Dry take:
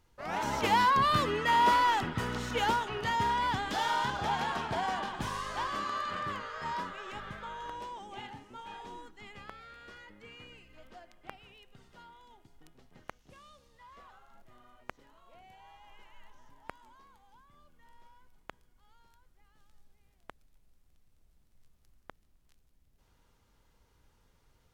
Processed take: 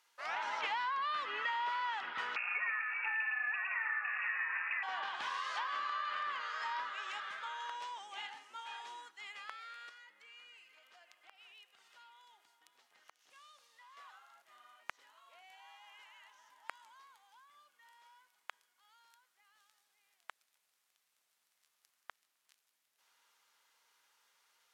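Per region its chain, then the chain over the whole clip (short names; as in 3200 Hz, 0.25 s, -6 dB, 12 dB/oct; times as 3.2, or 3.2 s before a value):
2.36–4.83 echo 0.111 s -4 dB + inverted band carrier 2700 Hz
9.89–13.97 compressor 3:1, threshold -57 dBFS + echo 0.491 s -14.5 dB
whole clip: treble ducked by the level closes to 3000 Hz, closed at -31 dBFS; HPF 1200 Hz 12 dB/oct; compressor, threshold -38 dBFS; gain +3.5 dB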